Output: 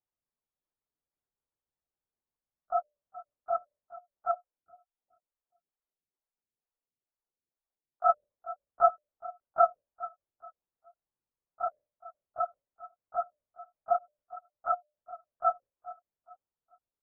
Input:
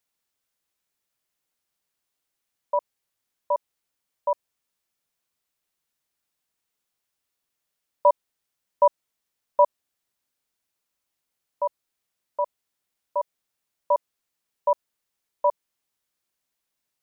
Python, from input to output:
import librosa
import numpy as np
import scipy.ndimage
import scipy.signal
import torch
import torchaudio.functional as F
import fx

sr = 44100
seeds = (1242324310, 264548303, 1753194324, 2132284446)

y = fx.partial_stretch(x, sr, pct=122)
y = scipy.signal.sosfilt(scipy.signal.butter(2, 1000.0, 'lowpass', fs=sr, output='sos'), y)
y = fx.hum_notches(y, sr, base_hz=60, count=10)
y = fx.echo_feedback(y, sr, ms=420, feedback_pct=30, wet_db=-16.5)
y = fx.lpc_vocoder(y, sr, seeds[0], excitation='whisper', order=16)
y = fx.stagger_phaser(y, sr, hz=2.2, at=(4.31, 8.1))